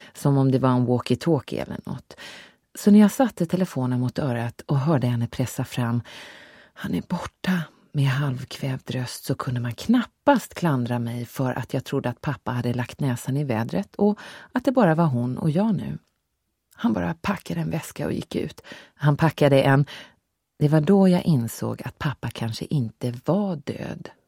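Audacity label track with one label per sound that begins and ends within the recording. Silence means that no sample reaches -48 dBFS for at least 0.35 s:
16.720000	20.120000	sound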